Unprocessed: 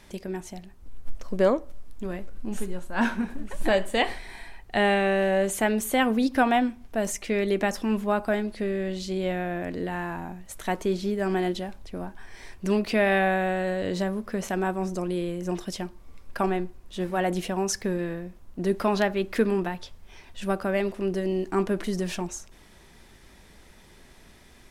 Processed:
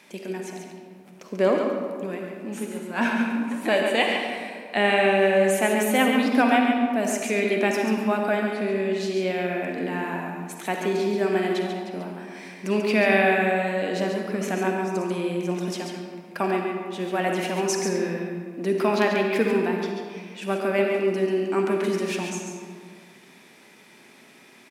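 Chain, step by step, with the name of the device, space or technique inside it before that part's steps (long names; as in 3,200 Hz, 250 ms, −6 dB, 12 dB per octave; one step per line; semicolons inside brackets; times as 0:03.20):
PA in a hall (high-pass filter 180 Hz 24 dB per octave; parametric band 2,400 Hz +8 dB 0.32 octaves; single-tap delay 139 ms −6 dB; convolution reverb RT60 2.0 s, pre-delay 43 ms, DRR 3 dB)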